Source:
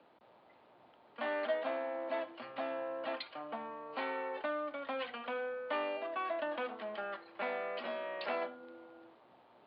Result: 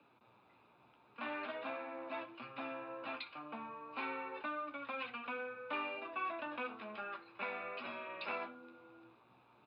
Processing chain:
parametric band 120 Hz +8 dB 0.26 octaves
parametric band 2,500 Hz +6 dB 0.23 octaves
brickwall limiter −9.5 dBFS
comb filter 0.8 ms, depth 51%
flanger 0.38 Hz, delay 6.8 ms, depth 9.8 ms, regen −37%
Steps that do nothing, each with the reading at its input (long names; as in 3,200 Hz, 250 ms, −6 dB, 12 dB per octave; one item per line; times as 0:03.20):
brickwall limiter −9.5 dBFS: peak of its input −22.5 dBFS